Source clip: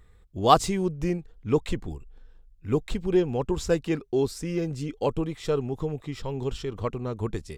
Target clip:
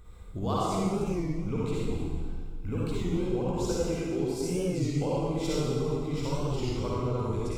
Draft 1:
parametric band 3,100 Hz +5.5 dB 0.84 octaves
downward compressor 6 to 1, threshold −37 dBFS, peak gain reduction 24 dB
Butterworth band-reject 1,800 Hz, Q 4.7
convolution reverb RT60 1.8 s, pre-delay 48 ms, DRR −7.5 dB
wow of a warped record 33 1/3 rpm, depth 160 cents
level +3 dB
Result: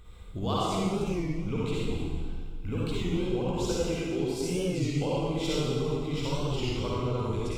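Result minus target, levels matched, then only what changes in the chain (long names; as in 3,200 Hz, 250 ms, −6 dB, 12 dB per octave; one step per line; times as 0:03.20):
4,000 Hz band +5.0 dB
change: parametric band 3,100 Hz −3 dB 0.84 octaves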